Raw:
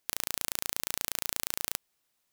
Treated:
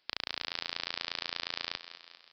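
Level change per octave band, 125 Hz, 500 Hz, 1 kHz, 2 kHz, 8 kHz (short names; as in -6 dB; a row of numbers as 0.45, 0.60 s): -6.5, -1.5, 0.0, +2.0, -24.5 dB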